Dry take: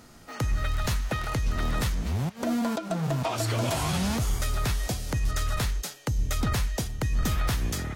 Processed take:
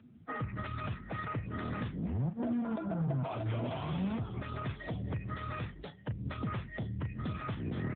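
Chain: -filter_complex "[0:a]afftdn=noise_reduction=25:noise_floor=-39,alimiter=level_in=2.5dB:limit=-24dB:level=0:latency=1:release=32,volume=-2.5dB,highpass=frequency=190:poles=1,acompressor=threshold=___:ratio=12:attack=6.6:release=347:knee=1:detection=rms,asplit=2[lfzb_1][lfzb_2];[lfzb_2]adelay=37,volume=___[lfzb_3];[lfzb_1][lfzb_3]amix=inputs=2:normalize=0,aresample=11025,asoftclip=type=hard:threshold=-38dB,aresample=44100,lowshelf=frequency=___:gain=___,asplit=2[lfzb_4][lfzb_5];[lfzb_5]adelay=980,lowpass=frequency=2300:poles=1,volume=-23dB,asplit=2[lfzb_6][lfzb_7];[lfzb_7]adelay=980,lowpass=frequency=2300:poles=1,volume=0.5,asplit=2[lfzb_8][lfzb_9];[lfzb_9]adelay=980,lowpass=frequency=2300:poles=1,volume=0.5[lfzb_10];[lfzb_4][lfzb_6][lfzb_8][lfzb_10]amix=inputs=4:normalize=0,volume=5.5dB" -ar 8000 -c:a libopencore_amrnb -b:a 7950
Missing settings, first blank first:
-38dB, -12dB, 280, 7.5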